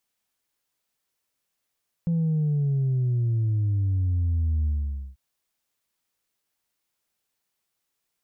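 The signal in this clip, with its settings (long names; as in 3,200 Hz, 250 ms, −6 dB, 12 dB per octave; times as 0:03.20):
bass drop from 170 Hz, over 3.09 s, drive 1 dB, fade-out 0.50 s, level −21 dB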